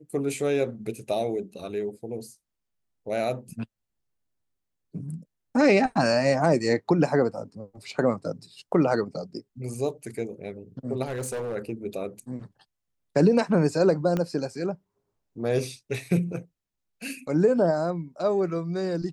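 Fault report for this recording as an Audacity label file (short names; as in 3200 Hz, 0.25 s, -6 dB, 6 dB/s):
11.070000	11.560000	clipped -27 dBFS
14.170000	14.170000	pop -15 dBFS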